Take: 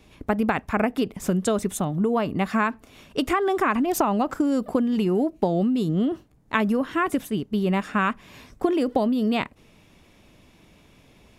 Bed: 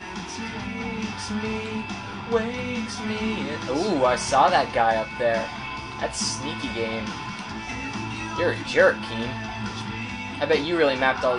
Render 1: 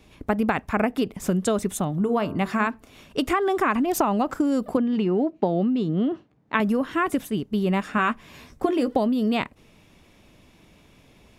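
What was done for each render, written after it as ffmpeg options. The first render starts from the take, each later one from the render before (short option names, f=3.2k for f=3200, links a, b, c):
-filter_complex "[0:a]asettb=1/sr,asplit=3[a][b][c];[a]atrim=end=1.984[d];[b]atrim=start=1.98:end=2.67,asetpts=PTS-STARTPTS,afade=t=in:d=0.004:c=qsin,afade=t=out:st=0.686:d=0.004:c=qsin,bandreject=f=75.19:t=h:w=4,bandreject=f=150.38:t=h:w=4,bandreject=f=225.57:t=h:w=4,bandreject=f=300.76:t=h:w=4,bandreject=f=375.95:t=h:w=4,bandreject=f=451.14:t=h:w=4,bandreject=f=526.33:t=h:w=4,bandreject=f=601.52:t=h:w=4,bandreject=f=676.71:t=h:w=4,bandreject=f=751.9:t=h:w=4,bandreject=f=827.09:t=h:w=4,bandreject=f=902.28:t=h:w=4,bandreject=f=977.47:t=h:w=4,bandreject=f=1.05266k:t=h:w=4,bandreject=f=1.12785k:t=h:w=4,bandreject=f=1.20304k:t=h:w=4,bandreject=f=1.27823k:t=h:w=4,bandreject=f=1.35342k:t=h:w=4,bandreject=f=1.42861k:t=h:w=4,bandreject=f=1.5038k:t=h:w=4,bandreject=f=1.57899k:t=h:w=4[e];[c]atrim=start=2.666[f];[d][e]acrossfade=d=0.004:c1=hsin:c2=qsin[g];[g][f]acrossfade=d=0.004:c1=qsin:c2=hsin,asettb=1/sr,asplit=3[h][i][j];[h]atrim=end=4.774[k];[i]atrim=start=4.77:end=6.6,asetpts=PTS-STARTPTS,afade=t=in:d=0.004:c=qsin,afade=t=out:st=1.826:d=0.004:c=qsin,highpass=130,lowpass=3.6k[l];[j]atrim=start=6.596[m];[k][l]acrossfade=d=0.004:c1=hsin:c2=qsin[n];[n][m]acrossfade=d=0.004:c1=qsin:c2=hsin,asettb=1/sr,asplit=3[o][p][q];[o]atrim=end=7.964[r];[p]atrim=start=7.96:end=8.91,asetpts=PTS-STARTPTS,afade=t=in:d=0.004:c=qsin,afade=t=out:st=0.946:d=0.004:c=qsin,asplit=2[s][t];[t]adelay=13,volume=-8dB[u];[s][u]amix=inputs=2:normalize=0,atrim=end_sample=41895[v];[q]atrim=start=8.906[w];[r][v]acrossfade=d=0.004:c1=hsin:c2=qsin[x];[x][w]acrossfade=d=0.004:c1=qsin:c2=hsin"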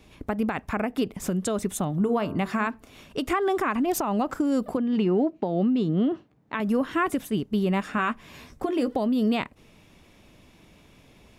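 -af "alimiter=limit=-15dB:level=0:latency=1:release=206"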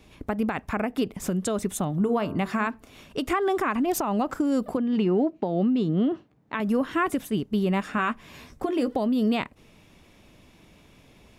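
-af anull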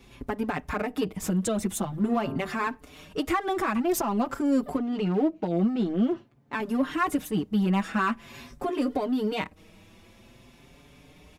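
-filter_complex "[0:a]asplit=2[a][b];[b]asoftclip=type=hard:threshold=-30.5dB,volume=-4.5dB[c];[a][c]amix=inputs=2:normalize=0,asplit=2[d][e];[e]adelay=5.4,afreqshift=0.48[f];[d][f]amix=inputs=2:normalize=1"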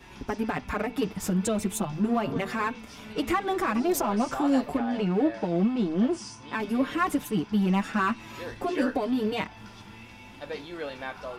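-filter_complex "[1:a]volume=-15.5dB[a];[0:a][a]amix=inputs=2:normalize=0"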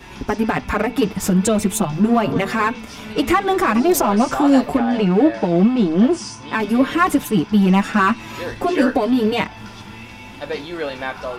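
-af "volume=10dB"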